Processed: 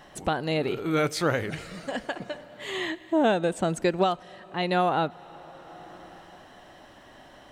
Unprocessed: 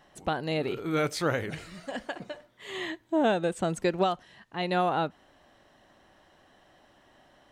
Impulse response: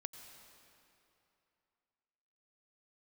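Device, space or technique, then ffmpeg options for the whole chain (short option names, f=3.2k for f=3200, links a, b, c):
ducked reverb: -filter_complex "[0:a]asplit=3[a][b][c];[1:a]atrim=start_sample=2205[d];[b][d]afir=irnorm=-1:irlink=0[e];[c]apad=whole_len=331201[f];[e][f]sidechaincompress=threshold=-42dB:ratio=10:attack=9.2:release=730,volume=7dB[g];[a][g]amix=inputs=2:normalize=0,volume=1.5dB"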